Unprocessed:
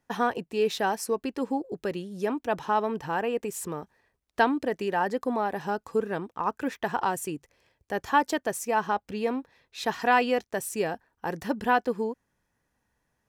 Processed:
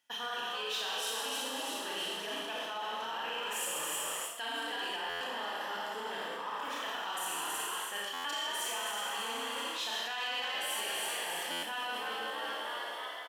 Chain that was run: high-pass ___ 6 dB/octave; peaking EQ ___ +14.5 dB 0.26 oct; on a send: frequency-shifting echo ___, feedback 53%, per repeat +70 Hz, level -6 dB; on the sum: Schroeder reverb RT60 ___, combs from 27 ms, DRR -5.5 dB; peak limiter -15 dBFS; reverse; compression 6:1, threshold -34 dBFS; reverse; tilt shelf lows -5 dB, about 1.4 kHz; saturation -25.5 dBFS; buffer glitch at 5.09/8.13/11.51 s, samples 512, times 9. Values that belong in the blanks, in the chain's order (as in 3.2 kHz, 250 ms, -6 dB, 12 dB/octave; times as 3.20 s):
890 Hz, 3.1 kHz, 323 ms, 1.9 s